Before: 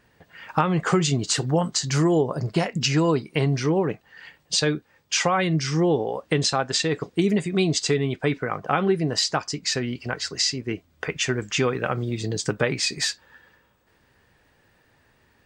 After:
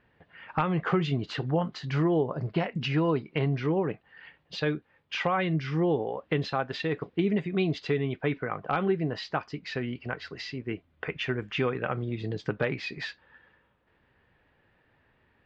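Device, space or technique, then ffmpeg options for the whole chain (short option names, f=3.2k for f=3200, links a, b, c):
synthesiser wavefolder: -af "aeval=exprs='0.335*(abs(mod(val(0)/0.335+3,4)-2)-1)':c=same,lowpass=f=3.3k:w=0.5412,lowpass=f=3.3k:w=1.3066,volume=-5dB"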